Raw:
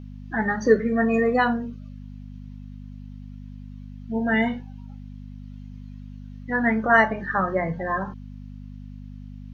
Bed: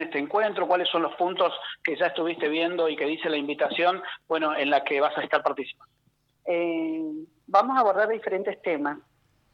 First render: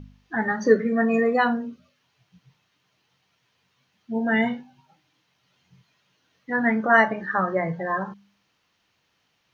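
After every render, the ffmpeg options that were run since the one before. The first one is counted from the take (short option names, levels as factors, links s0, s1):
-af "bandreject=f=50:t=h:w=4,bandreject=f=100:t=h:w=4,bandreject=f=150:t=h:w=4,bandreject=f=200:t=h:w=4,bandreject=f=250:t=h:w=4"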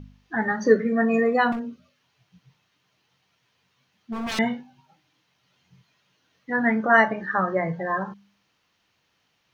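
-filter_complex "[0:a]asettb=1/sr,asplit=3[s0][s1][s2];[s0]atrim=end=1.524[s3];[s1]atrim=start=1.52:end=4.39,asetpts=PTS-STARTPTS,afade=t=in:d=0.004:c=qsin,afade=t=out:st=2.866:d=0.004:c=qsin,aeval=exprs='0.0596*(abs(mod(val(0)/0.0596+3,4)-2)-1)':c=same[s4];[s2]atrim=start=4.386[s5];[s3][s4]acrossfade=d=0.004:c1=hsin:c2=qsin[s6];[s6][s5]acrossfade=d=0.004:c1=qsin:c2=hsin"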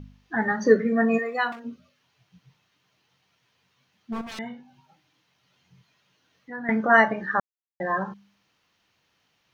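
-filter_complex "[0:a]asplit=3[s0][s1][s2];[s0]afade=t=out:st=1.17:d=0.02[s3];[s1]highpass=f=1300:p=1,afade=t=in:st=1.17:d=0.02,afade=t=out:st=1.64:d=0.02[s4];[s2]afade=t=in:st=1.64:d=0.02[s5];[s3][s4][s5]amix=inputs=3:normalize=0,asettb=1/sr,asplit=3[s6][s7][s8];[s6]atrim=end=4.214[s9];[s7]atrim=start=4.21:end=6.69,asetpts=PTS-STARTPTS,afade=t=in:d=0.004:c=qsin,afade=t=out:st=2.476:d=0.004:c=qsin,acompressor=threshold=0.00224:ratio=1.5:attack=3.2:release=140:knee=1:detection=peak[s10];[s8]atrim=start=6.686[s11];[s9][s10]acrossfade=d=0.004:c1=hsin:c2=qsin[s12];[s12][s11]acrossfade=d=0.004:c1=qsin:c2=hsin,asplit=3[s13][s14][s15];[s13]atrim=end=7.4,asetpts=PTS-STARTPTS,afade=t=out:st=7.396:d=0.004:c=hsin[s16];[s14]atrim=start=7.4:end=7.8,asetpts=PTS-STARTPTS,volume=0[s17];[s15]atrim=start=7.8,asetpts=PTS-STARTPTS,afade=t=in:d=0.004:c=hsin[s18];[s16][s17][s18]concat=n=3:v=0:a=1"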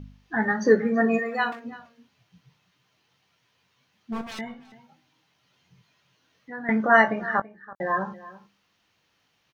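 -filter_complex "[0:a]asplit=2[s0][s1];[s1]adelay=19,volume=0.251[s2];[s0][s2]amix=inputs=2:normalize=0,asplit=2[s3][s4];[s4]adelay=332.4,volume=0.126,highshelf=f=4000:g=-7.48[s5];[s3][s5]amix=inputs=2:normalize=0"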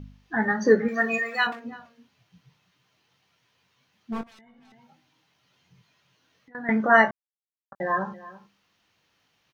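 -filter_complex "[0:a]asettb=1/sr,asplit=3[s0][s1][s2];[s0]atrim=end=0.884[s3];[s1]atrim=start=0.88:end=1.47,asetpts=PTS-STARTPTS,afade=t=in:d=0.004:c=qsin,afade=t=out:st=0.586:d=0.004:c=qsin,tiltshelf=f=1100:g=-9.5[s4];[s2]atrim=start=1.466[s5];[s3][s4]acrossfade=d=0.004:c1=hsin:c2=qsin[s6];[s6][s5]acrossfade=d=0.004:c1=qsin:c2=hsin,asettb=1/sr,asplit=3[s7][s8][s9];[s7]atrim=end=4.234[s10];[s8]atrim=start=4.23:end=6.55,asetpts=PTS-STARTPTS,afade=t=in:d=0.004:c=qsin,afade=t=out:st=2.316:d=0.004:c=qsin,acompressor=threshold=0.00282:ratio=16:attack=3.2:release=140:knee=1:detection=peak[s11];[s9]atrim=start=6.546[s12];[s10][s11]acrossfade=d=0.004:c1=hsin:c2=qsin[s13];[s13][s12]acrossfade=d=0.004:c1=qsin:c2=hsin,asplit=3[s14][s15][s16];[s14]atrim=end=7.11,asetpts=PTS-STARTPTS,afade=t=out:st=7.106:d=0.004:c=hsin[s17];[s15]atrim=start=7.11:end=7.72,asetpts=PTS-STARTPTS,volume=0[s18];[s16]atrim=start=7.72,asetpts=PTS-STARTPTS,afade=t=in:d=0.004:c=hsin[s19];[s17][s18][s19]concat=n=3:v=0:a=1"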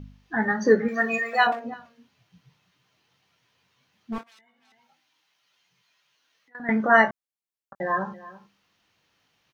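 -filter_complex "[0:a]asettb=1/sr,asplit=3[s0][s1][s2];[s0]atrim=end=1.334[s3];[s1]atrim=start=1.33:end=1.74,asetpts=PTS-STARTPTS,afade=t=in:d=0.004:c=qsin,afade=t=out:st=0.406:d=0.004:c=qsin,equalizer=f=650:w=1.5:g=13[s4];[s2]atrim=start=1.736[s5];[s3][s4]acrossfade=d=0.004:c1=hsin:c2=qsin[s6];[s6][s5]acrossfade=d=0.004:c1=qsin:c2=hsin,asettb=1/sr,asplit=3[s7][s8][s9];[s7]atrim=end=4.184[s10];[s8]atrim=start=4.18:end=6.6,asetpts=PTS-STARTPTS,afade=t=in:d=0.004:c=qsin,afade=t=out:st=2.416:d=0.004:c=qsin,highpass=f=1300:p=1[s11];[s9]atrim=start=6.596[s12];[s10][s11]acrossfade=d=0.004:c1=hsin:c2=qsin[s13];[s13][s12]acrossfade=d=0.004:c1=qsin:c2=hsin"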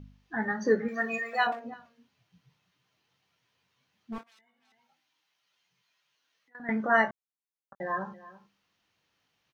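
-af "volume=0.473"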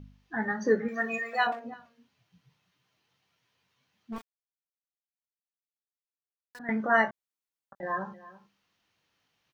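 -filter_complex "[0:a]asettb=1/sr,asplit=3[s0][s1][s2];[s0]atrim=end=0.634[s3];[s1]atrim=start=0.63:end=1.2,asetpts=PTS-STARTPTS,afade=t=in:d=0.004:c=qsin,afade=t=out:st=0.566:d=0.004:c=qsin,bandreject=f=4500:w=12[s4];[s2]atrim=start=1.196[s5];[s3][s4]acrossfade=d=0.004:c1=hsin:c2=qsin[s6];[s6][s5]acrossfade=d=0.004:c1=qsin:c2=hsin,asettb=1/sr,asplit=3[s7][s8][s9];[s7]atrim=end=4.164[s10];[s8]atrim=start=4.16:end=6.59,asetpts=PTS-STARTPTS,afade=t=in:d=0.004:c=qsin,afade=t=out:st=2.426:d=0.004:c=qsin,aeval=exprs='val(0)*gte(abs(val(0)),0.00501)':c=same[s11];[s9]atrim=start=6.586[s12];[s10][s11]acrossfade=d=0.004:c1=hsin:c2=qsin[s13];[s13][s12]acrossfade=d=0.004:c1=qsin:c2=hsin,asettb=1/sr,asplit=3[s14][s15][s16];[s14]atrim=end=7.094[s17];[s15]atrim=start=7.09:end=7.83,asetpts=PTS-STARTPTS,afade=t=in:d=0.004:c=qsin,afade=t=out:st=0.736:d=0.004:c=qsin,acompressor=threshold=0.0126:ratio=6:attack=3.2:release=140:knee=1:detection=peak[s18];[s16]atrim=start=7.826[s19];[s17][s18]acrossfade=d=0.004:c1=hsin:c2=qsin[s20];[s20][s19]acrossfade=d=0.004:c1=qsin:c2=hsin"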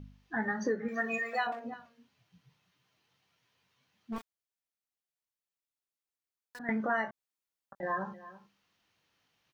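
-af "acompressor=threshold=0.0398:ratio=6"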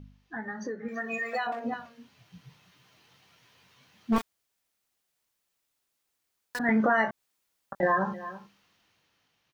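-af "alimiter=level_in=1.5:limit=0.0631:level=0:latency=1:release=268,volume=0.668,dynaudnorm=f=380:g=9:m=4.73"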